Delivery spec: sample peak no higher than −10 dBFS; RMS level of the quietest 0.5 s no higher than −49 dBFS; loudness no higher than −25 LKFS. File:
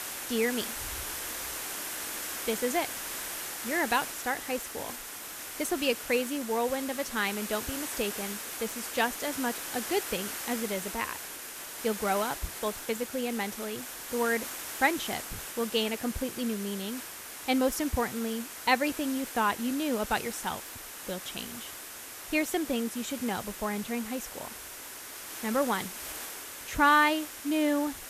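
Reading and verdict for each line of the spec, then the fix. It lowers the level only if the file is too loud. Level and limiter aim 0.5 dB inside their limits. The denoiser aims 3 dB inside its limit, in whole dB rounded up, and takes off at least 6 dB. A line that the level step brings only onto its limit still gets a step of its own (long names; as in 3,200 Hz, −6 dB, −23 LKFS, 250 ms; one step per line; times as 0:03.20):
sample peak −11.0 dBFS: in spec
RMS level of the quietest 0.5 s −44 dBFS: out of spec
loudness −31.0 LKFS: in spec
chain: broadband denoise 8 dB, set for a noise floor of −44 dBFS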